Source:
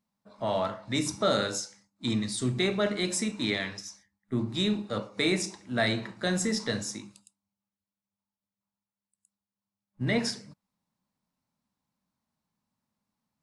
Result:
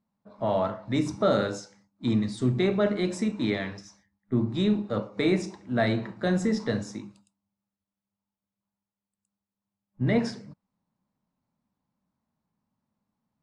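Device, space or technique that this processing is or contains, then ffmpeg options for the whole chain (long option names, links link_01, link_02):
through cloth: -af "lowpass=7800,highshelf=frequency=1900:gain=-13.5,volume=4.5dB"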